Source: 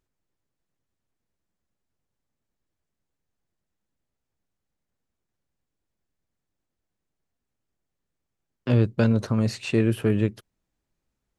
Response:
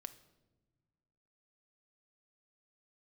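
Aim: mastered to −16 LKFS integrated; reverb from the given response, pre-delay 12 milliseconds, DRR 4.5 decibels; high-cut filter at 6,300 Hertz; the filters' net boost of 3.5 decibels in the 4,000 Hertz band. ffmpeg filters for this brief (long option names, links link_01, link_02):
-filter_complex "[0:a]lowpass=6300,equalizer=frequency=4000:width_type=o:gain=5,asplit=2[link_01][link_02];[1:a]atrim=start_sample=2205,adelay=12[link_03];[link_02][link_03]afir=irnorm=-1:irlink=0,volume=0.5dB[link_04];[link_01][link_04]amix=inputs=2:normalize=0,volume=7dB"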